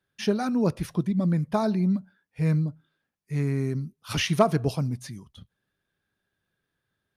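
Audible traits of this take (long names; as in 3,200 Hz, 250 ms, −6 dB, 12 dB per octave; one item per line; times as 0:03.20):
background noise floor −82 dBFS
spectral slope −6.5 dB per octave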